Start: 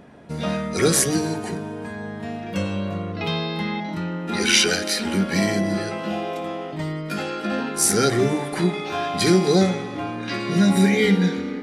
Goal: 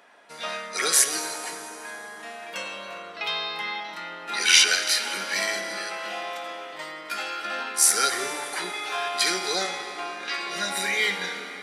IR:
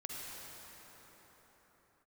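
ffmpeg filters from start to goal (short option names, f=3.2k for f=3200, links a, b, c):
-filter_complex "[0:a]highpass=980,asplit=2[a][b];[1:a]atrim=start_sample=2205[c];[b][c]afir=irnorm=-1:irlink=0,volume=-6dB[d];[a][d]amix=inputs=2:normalize=0,volume=-1dB"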